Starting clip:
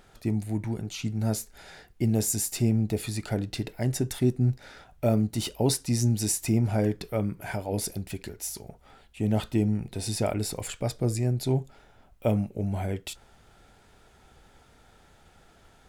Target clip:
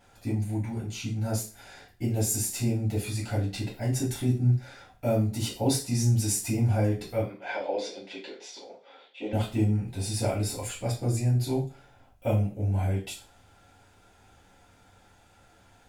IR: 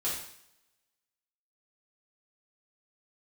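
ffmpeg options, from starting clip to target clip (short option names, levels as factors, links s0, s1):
-filter_complex "[0:a]asettb=1/sr,asplit=3[s0][s1][s2];[s0]atrim=end=7.214[s3];[s1]atrim=start=7.21:end=9.33,asetpts=PTS-STARTPTS,afade=t=in:d=0.004:c=qsin,afade=t=out:st=2.116:d=0.004:c=qsin,highpass=f=290:w=0.5412,highpass=f=290:w=1.3066,equalizer=f=520:t=q:w=4:g=10,equalizer=f=1000:t=q:w=4:g=3,equalizer=f=2200:t=q:w=4:g=4,equalizer=f=3500:t=q:w=4:g=9,lowpass=f=5100:w=0.5412,lowpass=f=5100:w=1.3066[s4];[s2]atrim=start=9.326[s5];[s3][s4]acrossfade=d=0.004:c1=hsin:c2=qsin[s6];[s6][s5]acrossfade=d=0.004:c1=qsin:c2=hsin[s7];[1:a]atrim=start_sample=2205,asetrate=88200,aresample=44100[s8];[s7][s8]afir=irnorm=-1:irlink=0"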